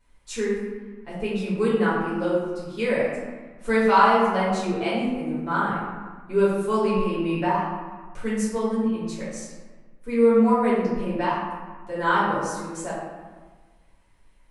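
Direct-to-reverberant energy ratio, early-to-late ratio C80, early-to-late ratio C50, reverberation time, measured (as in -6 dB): -10.0 dB, 2.5 dB, -0.5 dB, 1.4 s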